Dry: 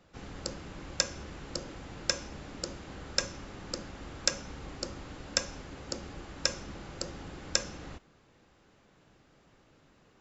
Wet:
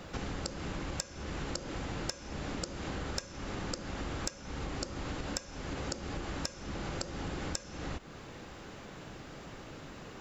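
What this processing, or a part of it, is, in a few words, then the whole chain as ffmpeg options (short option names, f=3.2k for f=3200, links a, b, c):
serial compression, peaks first: -af "acompressor=threshold=-45dB:ratio=10,acompressor=threshold=-60dB:ratio=1.5,volume=16.5dB"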